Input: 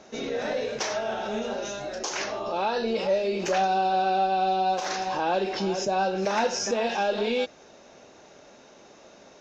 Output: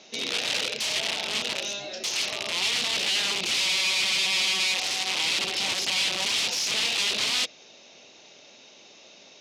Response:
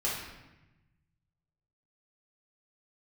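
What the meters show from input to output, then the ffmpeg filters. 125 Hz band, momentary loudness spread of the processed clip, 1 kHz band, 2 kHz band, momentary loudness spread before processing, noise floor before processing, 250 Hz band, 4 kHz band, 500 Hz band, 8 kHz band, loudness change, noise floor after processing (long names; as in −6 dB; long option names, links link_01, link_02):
−7.5 dB, 5 LU, −13.0 dB, +6.5 dB, 7 LU, −52 dBFS, −10.5 dB, +13.0 dB, −13.0 dB, can't be measured, +2.5 dB, −52 dBFS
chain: -af "aeval=exprs='(mod(16.8*val(0)+1,2)-1)/16.8':channel_layout=same,highpass=110,lowpass=3600,aexciter=amount=5.3:drive=7.6:freq=2300,volume=-5dB"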